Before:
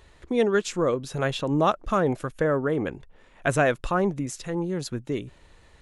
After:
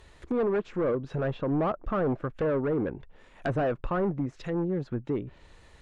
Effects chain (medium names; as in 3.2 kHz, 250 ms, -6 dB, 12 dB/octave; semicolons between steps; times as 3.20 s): hard clipper -23 dBFS, distortion -8 dB; low-pass that closes with the level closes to 1.3 kHz, closed at -27.5 dBFS